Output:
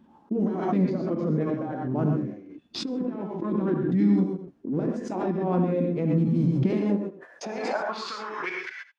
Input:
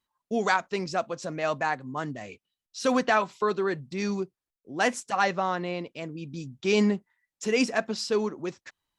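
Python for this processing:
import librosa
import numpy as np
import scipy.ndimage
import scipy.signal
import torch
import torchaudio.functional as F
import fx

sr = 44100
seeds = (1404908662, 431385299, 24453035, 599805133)

p1 = fx.leveller(x, sr, passes=2)
p2 = fx.over_compress(p1, sr, threshold_db=-21.0, ratio=-0.5)
p3 = fx.formant_shift(p2, sr, semitones=4)
p4 = fx.filter_sweep_bandpass(p3, sr, from_hz=320.0, to_hz=3000.0, start_s=6.51, end_s=8.54, q=3.6)
p5 = fx.formant_shift(p4, sr, semitones=-6)
p6 = p5 + fx.echo_single(p5, sr, ms=83, db=-16.0, dry=0)
p7 = fx.rev_gated(p6, sr, seeds[0], gate_ms=150, shape='rising', drr_db=0.5)
p8 = fx.pre_swell(p7, sr, db_per_s=39.0)
y = p8 * 10.0 ** (5.0 / 20.0)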